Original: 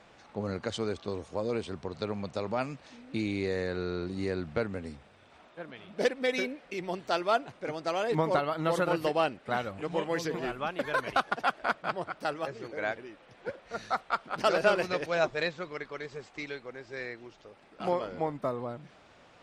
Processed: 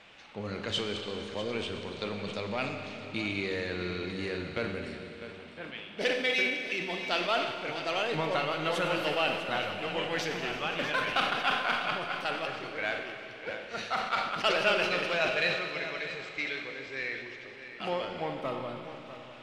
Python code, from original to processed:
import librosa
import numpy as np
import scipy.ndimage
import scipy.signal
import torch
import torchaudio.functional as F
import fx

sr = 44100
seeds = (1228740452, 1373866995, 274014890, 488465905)

p1 = 10.0 ** (-32.0 / 20.0) * np.tanh(x / 10.0 ** (-32.0 / 20.0))
p2 = x + (p1 * librosa.db_to_amplitude(-3.5))
p3 = fx.peak_eq(p2, sr, hz=2800.0, db=13.0, octaves=1.3)
p4 = p3 + 10.0 ** (-12.5 / 20.0) * np.pad(p3, (int(649 * sr / 1000.0), 0))[:len(p3)]
p5 = fx.rev_schroeder(p4, sr, rt60_s=2.9, comb_ms=30, drr_db=4.5)
p6 = fx.sustainer(p5, sr, db_per_s=60.0)
y = p6 * librosa.db_to_amplitude(-7.5)